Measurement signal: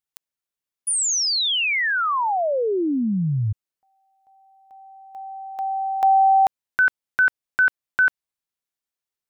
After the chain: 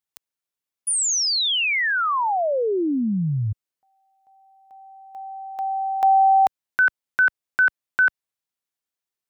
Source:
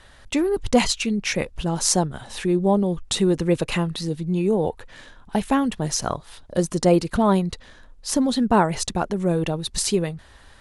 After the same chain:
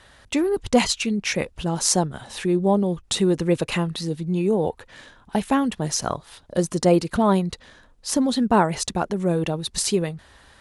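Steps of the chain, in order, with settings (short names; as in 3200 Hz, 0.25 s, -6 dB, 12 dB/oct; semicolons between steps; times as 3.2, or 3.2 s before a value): HPF 68 Hz 6 dB/oct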